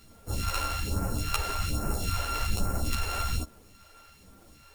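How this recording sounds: a buzz of ramps at a fixed pitch in blocks of 32 samples; phasing stages 2, 1.2 Hz, lowest notch 140–3400 Hz; a quantiser's noise floor 10-bit, dither none; a shimmering, thickened sound

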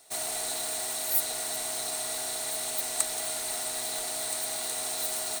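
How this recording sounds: noise floor -34 dBFS; spectral tilt +0.5 dB/octave

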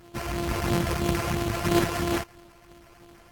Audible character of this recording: a buzz of ramps at a fixed pitch in blocks of 128 samples; phasing stages 8, 3 Hz, lowest notch 220–3000 Hz; aliases and images of a low sample rate 3.7 kHz, jitter 20%; AAC

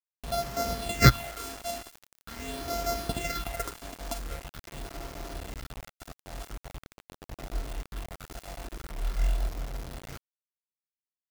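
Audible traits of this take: a buzz of ramps at a fixed pitch in blocks of 64 samples; phasing stages 6, 0.44 Hz, lowest notch 110–3000 Hz; a quantiser's noise floor 8-bit, dither none

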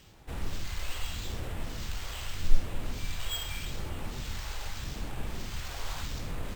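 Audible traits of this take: phasing stages 2, 0.82 Hz, lowest notch 210–3800 Hz; aliases and images of a low sample rate 11 kHz, jitter 0%; Opus

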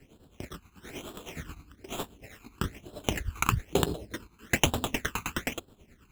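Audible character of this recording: aliases and images of a low sample rate 4.6 kHz, jitter 0%; phasing stages 12, 1.1 Hz, lowest notch 560–2100 Hz; tremolo triangle 9.5 Hz, depth 75%

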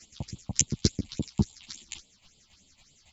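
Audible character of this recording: phasing stages 6, 3.5 Hz, lowest notch 380–1700 Hz; chopped level 3.6 Hz, depth 65%, duty 15%; a shimmering, thickened sound

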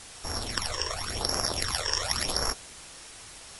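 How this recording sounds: a buzz of ramps at a fixed pitch in blocks of 8 samples; phasing stages 12, 0.91 Hz, lowest notch 220–3500 Hz; a quantiser's noise floor 8-bit, dither triangular; MP3

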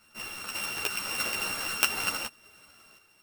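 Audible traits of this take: a buzz of ramps at a fixed pitch in blocks of 16 samples; random-step tremolo 3.7 Hz; a shimmering, thickened sound

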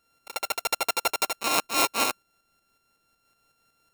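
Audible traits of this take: a buzz of ramps at a fixed pitch in blocks of 32 samples; tremolo saw up 5.4 Hz, depth 50%; AAC

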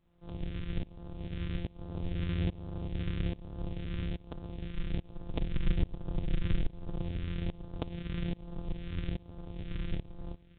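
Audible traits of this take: a buzz of ramps at a fixed pitch in blocks of 256 samples; phasing stages 2, 1.2 Hz, lowest notch 760–2100 Hz; tremolo saw up 1.2 Hz, depth 95%; µ-law

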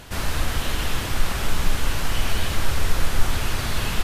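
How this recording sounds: noise floor -28 dBFS; spectral tilt -4.0 dB/octave

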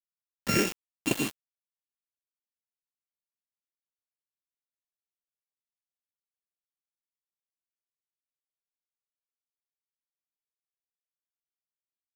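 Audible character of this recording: a buzz of ramps at a fixed pitch in blocks of 32 samples; phasing stages 6, 0.18 Hz, lowest notch 310–1400 Hz; a quantiser's noise floor 6-bit, dither none

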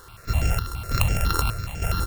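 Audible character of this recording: a buzz of ramps at a fixed pitch in blocks of 32 samples; chopped level 1.1 Hz, depth 65%, duty 65%; a quantiser's noise floor 8-bit, dither none; notches that jump at a steady rate 12 Hz 670–3900 Hz

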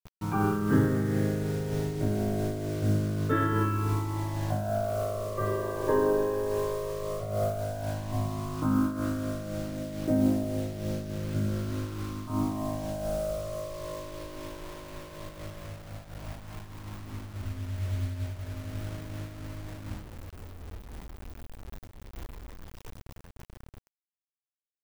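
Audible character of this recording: phasing stages 12, 0.12 Hz, lowest notch 220–1100 Hz; a quantiser's noise floor 8-bit, dither none; random flutter of the level

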